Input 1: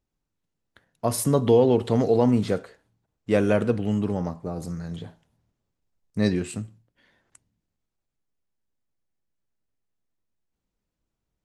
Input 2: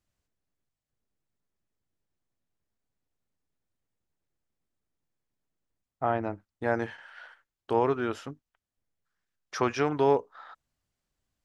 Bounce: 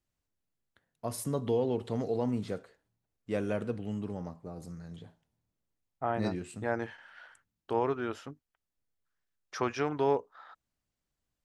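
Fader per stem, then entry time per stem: −11.5, −4.5 decibels; 0.00, 0.00 seconds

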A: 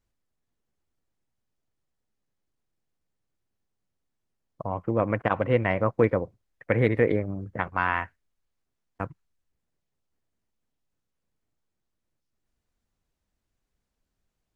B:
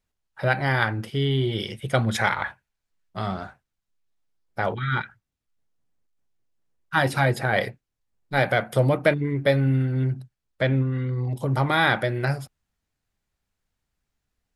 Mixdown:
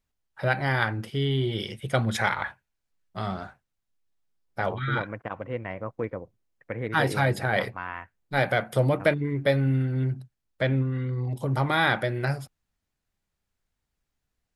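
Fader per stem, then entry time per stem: −10.0, −2.5 decibels; 0.00, 0.00 seconds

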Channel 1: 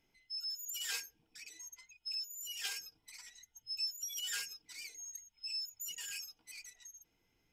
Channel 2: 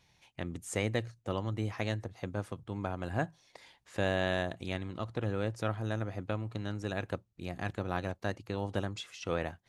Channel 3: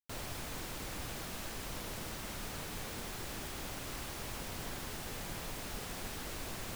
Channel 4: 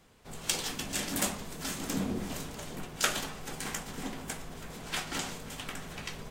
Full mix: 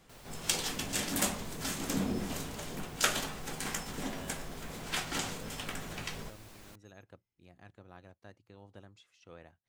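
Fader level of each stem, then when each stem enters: −18.5, −19.0, −11.5, 0.0 decibels; 0.00, 0.00, 0.00, 0.00 seconds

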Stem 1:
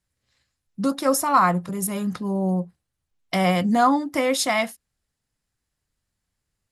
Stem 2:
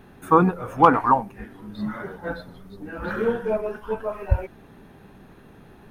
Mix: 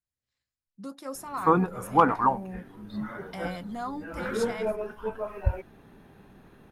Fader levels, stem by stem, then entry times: −17.0, −5.0 decibels; 0.00, 1.15 seconds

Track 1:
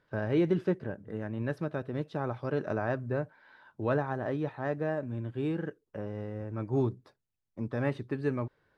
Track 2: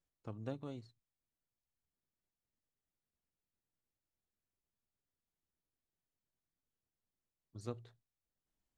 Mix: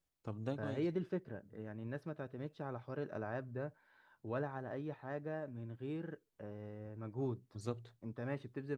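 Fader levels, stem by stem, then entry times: −10.5, +2.5 decibels; 0.45, 0.00 seconds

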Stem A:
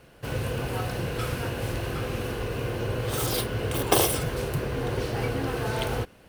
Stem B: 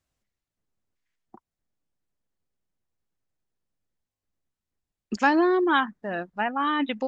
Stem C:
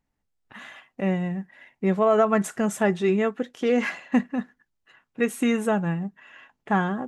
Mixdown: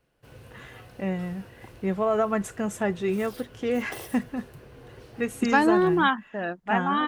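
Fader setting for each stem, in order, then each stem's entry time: −18.5, 0.0, −4.5 decibels; 0.00, 0.30, 0.00 seconds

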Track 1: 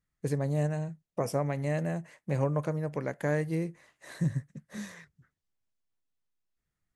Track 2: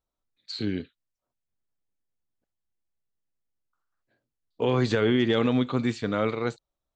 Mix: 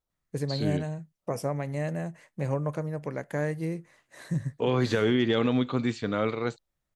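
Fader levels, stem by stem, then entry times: −0.5, −1.5 decibels; 0.10, 0.00 seconds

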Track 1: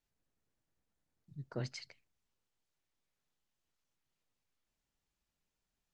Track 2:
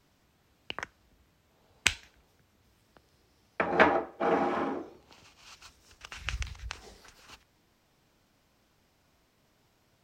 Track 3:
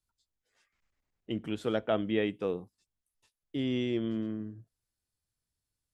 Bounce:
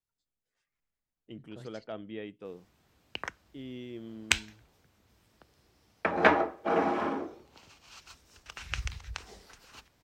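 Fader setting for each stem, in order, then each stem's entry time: −10.0, 0.0, −11.5 decibels; 0.00, 2.45, 0.00 seconds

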